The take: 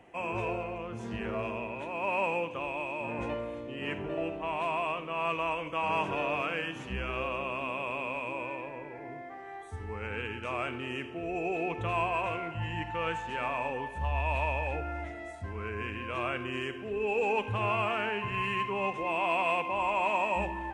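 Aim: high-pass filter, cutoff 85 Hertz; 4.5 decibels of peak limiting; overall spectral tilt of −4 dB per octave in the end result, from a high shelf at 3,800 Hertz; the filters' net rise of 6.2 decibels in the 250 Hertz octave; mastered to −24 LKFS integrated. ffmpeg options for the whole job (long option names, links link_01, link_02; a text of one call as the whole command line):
ffmpeg -i in.wav -af "highpass=85,equalizer=frequency=250:width_type=o:gain=8.5,highshelf=frequency=3800:gain=3.5,volume=8dB,alimiter=limit=-13dB:level=0:latency=1" out.wav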